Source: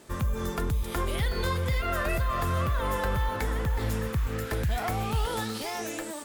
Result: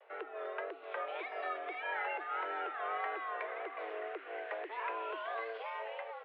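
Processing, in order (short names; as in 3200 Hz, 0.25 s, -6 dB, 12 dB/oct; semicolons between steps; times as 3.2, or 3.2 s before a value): vibrato 1.7 Hz 94 cents; mistuned SSB +220 Hz 190–2700 Hz; gain -7 dB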